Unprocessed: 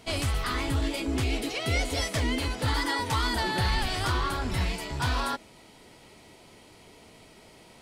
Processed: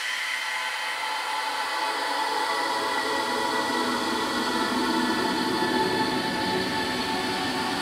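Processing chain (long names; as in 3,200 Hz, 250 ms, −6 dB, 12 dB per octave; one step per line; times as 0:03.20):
high-pass filter sweep 1,700 Hz → 260 Hz, 0:02.32–0:03.23
extreme stretch with random phases 4.8×, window 1.00 s, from 0:02.29
level +1.5 dB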